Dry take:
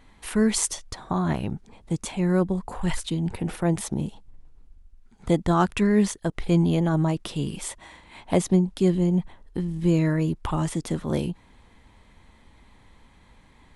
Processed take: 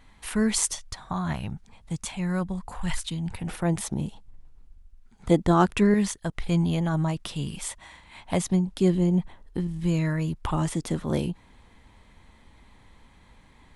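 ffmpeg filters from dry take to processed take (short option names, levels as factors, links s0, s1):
-af "asetnsamples=n=441:p=0,asendcmd='0.75 equalizer g -12.5;3.47 equalizer g -4;5.31 equalizer g 2.5;5.94 equalizer g -8;8.67 equalizer g -1;9.67 equalizer g -8.5;10.41 equalizer g -1',equalizer=f=370:t=o:w=1.5:g=-5"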